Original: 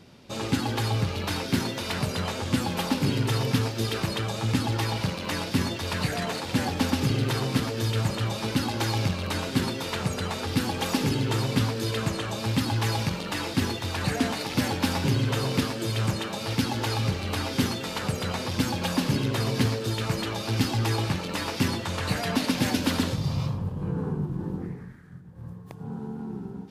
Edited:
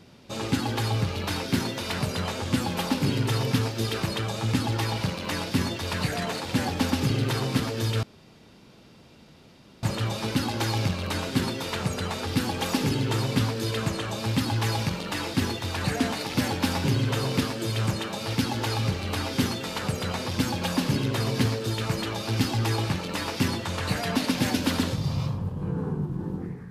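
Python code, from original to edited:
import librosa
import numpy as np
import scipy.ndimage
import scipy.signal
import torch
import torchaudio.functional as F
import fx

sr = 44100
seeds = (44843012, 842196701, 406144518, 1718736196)

y = fx.edit(x, sr, fx.insert_room_tone(at_s=8.03, length_s=1.8), tone=tone)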